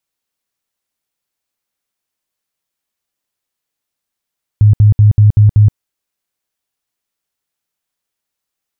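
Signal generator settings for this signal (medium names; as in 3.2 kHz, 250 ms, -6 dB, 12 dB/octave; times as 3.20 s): tone bursts 105 Hz, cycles 13, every 0.19 s, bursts 6, -3 dBFS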